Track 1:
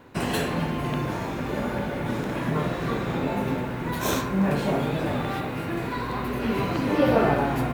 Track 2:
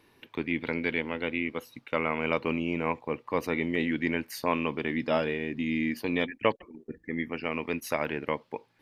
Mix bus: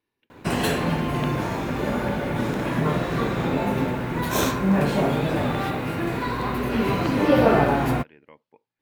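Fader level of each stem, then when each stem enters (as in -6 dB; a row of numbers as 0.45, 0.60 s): +3.0, -20.0 dB; 0.30, 0.00 s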